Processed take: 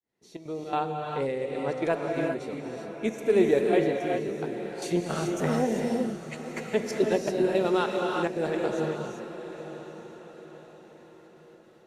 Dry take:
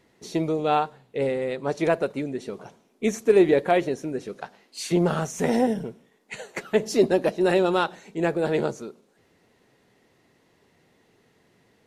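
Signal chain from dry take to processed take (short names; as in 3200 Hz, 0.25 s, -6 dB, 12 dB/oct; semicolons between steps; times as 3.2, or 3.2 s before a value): opening faded in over 0.88 s; step gate "xxxx.xx.xx.x" 165 bpm -12 dB; diffused feedback echo 0.951 s, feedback 42%, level -12 dB; non-linear reverb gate 0.42 s rising, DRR 1 dB; gain -5 dB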